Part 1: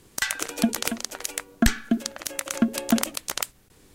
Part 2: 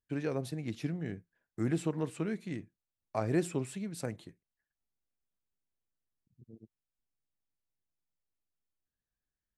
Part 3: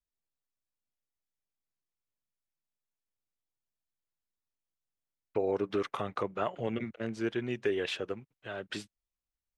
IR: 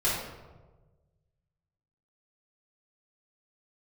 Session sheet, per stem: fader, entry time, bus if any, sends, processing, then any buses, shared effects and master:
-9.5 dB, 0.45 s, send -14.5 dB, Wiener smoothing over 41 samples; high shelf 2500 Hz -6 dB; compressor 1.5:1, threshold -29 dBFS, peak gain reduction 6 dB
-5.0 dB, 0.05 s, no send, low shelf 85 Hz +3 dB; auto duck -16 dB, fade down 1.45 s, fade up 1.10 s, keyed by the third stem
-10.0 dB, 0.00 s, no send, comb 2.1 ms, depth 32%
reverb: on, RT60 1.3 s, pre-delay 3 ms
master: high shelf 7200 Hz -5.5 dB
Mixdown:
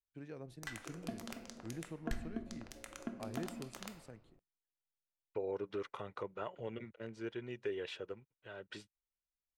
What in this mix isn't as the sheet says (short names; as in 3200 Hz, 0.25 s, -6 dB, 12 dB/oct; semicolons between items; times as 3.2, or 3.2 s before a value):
stem 1 -9.5 dB -> -15.5 dB; stem 2 -5.0 dB -> -14.5 dB